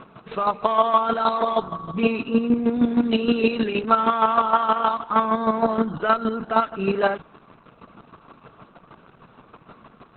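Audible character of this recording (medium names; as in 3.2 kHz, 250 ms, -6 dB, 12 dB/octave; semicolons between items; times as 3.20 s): chopped level 6.4 Hz, depth 60%, duty 25%; Opus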